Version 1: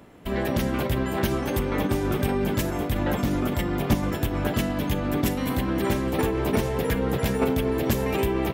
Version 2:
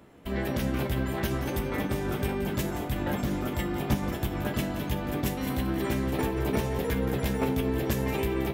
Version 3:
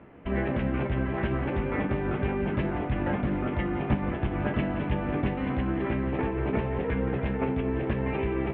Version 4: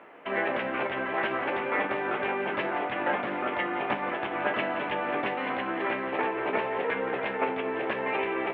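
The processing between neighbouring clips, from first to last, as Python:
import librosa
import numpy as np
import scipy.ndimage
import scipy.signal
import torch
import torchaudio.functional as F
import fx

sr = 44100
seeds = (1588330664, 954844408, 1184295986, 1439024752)

y1 = fx.comb_fb(x, sr, f0_hz=68.0, decay_s=0.17, harmonics='all', damping=0.0, mix_pct=80)
y1 = y1 + 10.0 ** (-11.5 / 20.0) * np.pad(y1, (int(175 * sr / 1000.0), 0))[:len(y1)]
y2 = scipy.signal.sosfilt(scipy.signal.butter(6, 2700.0, 'lowpass', fs=sr, output='sos'), y1)
y2 = fx.rider(y2, sr, range_db=3, speed_s=0.5)
y2 = F.gain(torch.from_numpy(y2), 1.0).numpy()
y3 = scipy.signal.sosfilt(scipy.signal.butter(2, 600.0, 'highpass', fs=sr, output='sos'), y2)
y3 = F.gain(torch.from_numpy(y3), 7.0).numpy()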